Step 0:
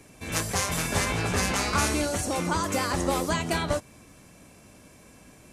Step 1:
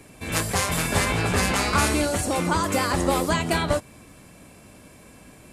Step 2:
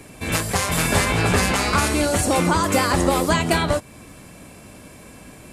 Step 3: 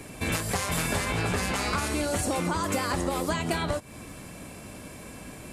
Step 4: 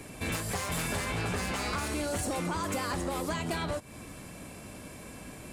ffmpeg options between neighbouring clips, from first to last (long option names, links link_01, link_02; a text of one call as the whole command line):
ffmpeg -i in.wav -af "equalizer=frequency=6000:width_type=o:width=0.32:gain=-6.5,volume=4dB" out.wav
ffmpeg -i in.wav -af "alimiter=limit=-12dB:level=0:latency=1:release=334,volume=5.5dB" out.wav
ffmpeg -i in.wav -af "acompressor=threshold=-25dB:ratio=6" out.wav
ffmpeg -i in.wav -af "asoftclip=type=tanh:threshold=-23dB,volume=-2.5dB" out.wav